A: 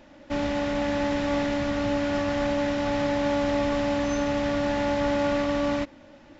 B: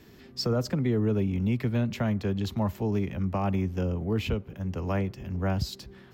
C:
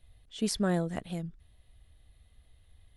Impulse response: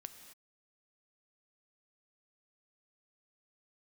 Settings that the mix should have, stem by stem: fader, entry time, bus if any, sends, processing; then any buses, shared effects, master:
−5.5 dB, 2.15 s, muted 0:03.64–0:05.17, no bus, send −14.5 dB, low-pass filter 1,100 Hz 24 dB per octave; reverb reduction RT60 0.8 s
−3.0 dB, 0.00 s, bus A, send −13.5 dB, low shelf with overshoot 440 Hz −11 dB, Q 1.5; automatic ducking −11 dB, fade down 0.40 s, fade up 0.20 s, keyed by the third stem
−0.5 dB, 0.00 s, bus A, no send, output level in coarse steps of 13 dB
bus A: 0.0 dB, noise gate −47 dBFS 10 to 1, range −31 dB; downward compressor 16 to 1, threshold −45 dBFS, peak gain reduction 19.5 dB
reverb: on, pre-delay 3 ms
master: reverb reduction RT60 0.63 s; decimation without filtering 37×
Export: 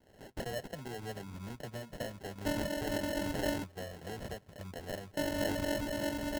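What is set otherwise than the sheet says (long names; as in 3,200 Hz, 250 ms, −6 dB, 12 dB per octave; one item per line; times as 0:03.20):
stem B −3.0 dB → +7.5 dB
stem C: muted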